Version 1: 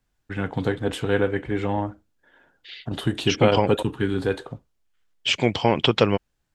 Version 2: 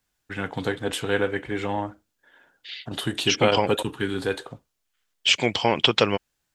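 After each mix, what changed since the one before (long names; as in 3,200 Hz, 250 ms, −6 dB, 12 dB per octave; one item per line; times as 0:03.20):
master: add spectral tilt +2 dB per octave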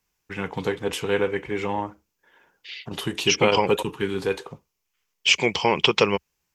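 master: add EQ curve with evenly spaced ripples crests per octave 0.79, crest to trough 7 dB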